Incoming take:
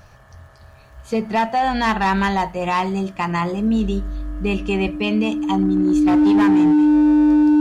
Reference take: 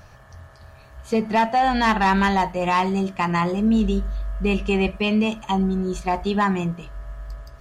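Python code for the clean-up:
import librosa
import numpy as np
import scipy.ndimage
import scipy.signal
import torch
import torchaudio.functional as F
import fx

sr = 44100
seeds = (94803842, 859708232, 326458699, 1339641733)

y = fx.fix_declip(x, sr, threshold_db=-11.0)
y = fx.fix_declick_ar(y, sr, threshold=6.5)
y = fx.notch(y, sr, hz=300.0, q=30.0)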